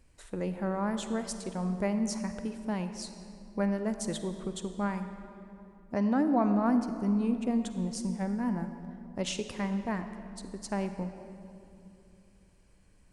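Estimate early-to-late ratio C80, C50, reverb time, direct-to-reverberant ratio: 9.5 dB, 9.0 dB, 2.9 s, 8.5 dB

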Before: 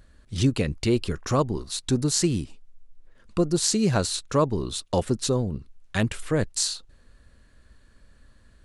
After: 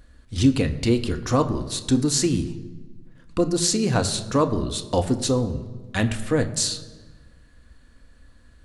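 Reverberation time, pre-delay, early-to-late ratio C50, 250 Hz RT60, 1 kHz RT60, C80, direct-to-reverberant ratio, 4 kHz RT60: 1.4 s, 3 ms, 13.5 dB, 1.7 s, 1.3 s, 14.5 dB, 7.0 dB, 1.0 s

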